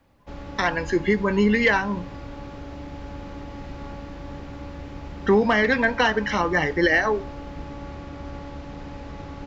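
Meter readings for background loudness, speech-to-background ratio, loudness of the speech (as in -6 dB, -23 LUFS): -37.5 LUFS, 16.0 dB, -21.5 LUFS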